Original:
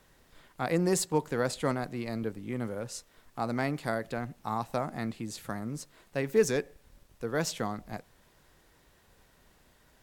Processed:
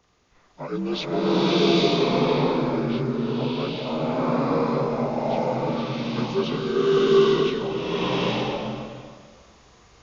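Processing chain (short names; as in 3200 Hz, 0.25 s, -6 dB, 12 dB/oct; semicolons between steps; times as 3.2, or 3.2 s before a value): inharmonic rescaling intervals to 78%; bloom reverb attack 0.85 s, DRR -11 dB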